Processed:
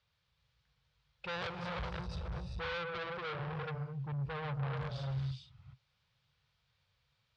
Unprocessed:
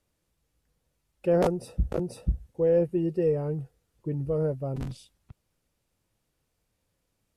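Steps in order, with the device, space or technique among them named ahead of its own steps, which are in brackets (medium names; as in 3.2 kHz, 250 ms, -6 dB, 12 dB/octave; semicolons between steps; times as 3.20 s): 2.66–3.39 s: Bessel high-pass 170 Hz, order 6; gated-style reverb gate 440 ms rising, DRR 3 dB; scooped metal amplifier (valve stage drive 33 dB, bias 0.25; cabinet simulation 79–4000 Hz, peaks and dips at 130 Hz +8 dB, 650 Hz -4 dB, 1.9 kHz -4 dB, 2.7 kHz -4 dB; amplifier tone stack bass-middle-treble 10-0-10); trim +10.5 dB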